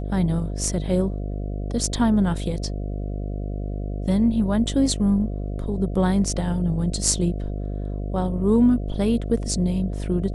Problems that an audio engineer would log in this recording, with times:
buzz 50 Hz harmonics 14 -28 dBFS

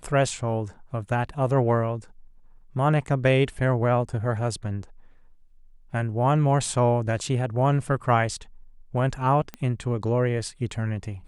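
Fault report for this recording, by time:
9.54 pop -19 dBFS

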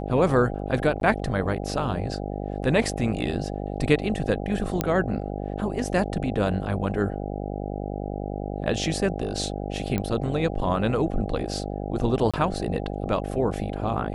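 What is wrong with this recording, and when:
buzz 50 Hz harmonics 16 -31 dBFS
1–1.01 gap 12 ms
4.81 pop -8 dBFS
9.98 pop -13 dBFS
12.31–12.34 gap 26 ms

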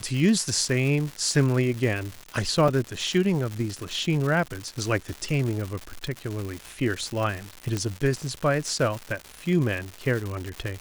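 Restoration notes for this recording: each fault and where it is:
crackle 260/s -29 dBFS
2.68 gap 3.8 ms
7.77 pop -14 dBFS

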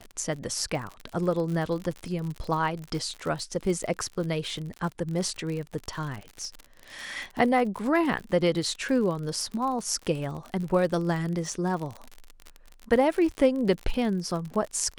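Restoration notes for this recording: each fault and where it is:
crackle 57/s -32 dBFS

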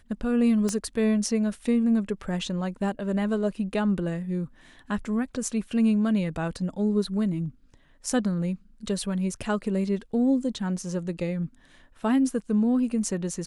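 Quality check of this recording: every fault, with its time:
0.69 pop -16 dBFS

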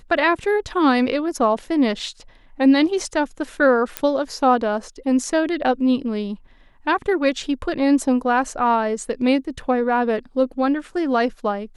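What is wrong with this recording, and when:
3.97 pop -6 dBFS

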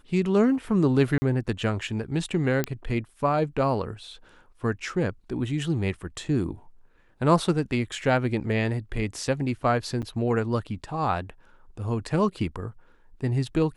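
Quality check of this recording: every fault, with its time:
1.18–1.22 gap 40 ms
2.64 pop -10 dBFS
10.02–10.03 gap 7.6 ms

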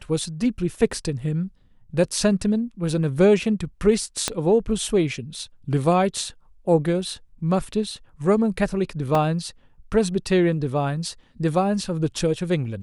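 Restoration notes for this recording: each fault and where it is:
4.28 pop -7 dBFS
9.15 gap 2.6 ms

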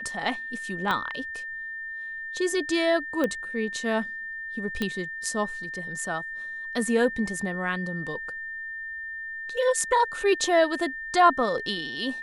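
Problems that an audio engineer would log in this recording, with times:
tone 1800 Hz -33 dBFS
0.91 pop -14 dBFS
3.24 pop -14 dBFS
4.82 pop -14 dBFS

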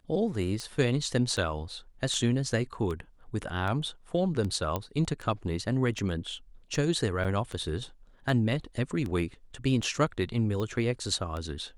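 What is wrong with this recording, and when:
tick 78 rpm -23 dBFS
4.76 pop -16 dBFS
7.24–7.25 gap 6.7 ms

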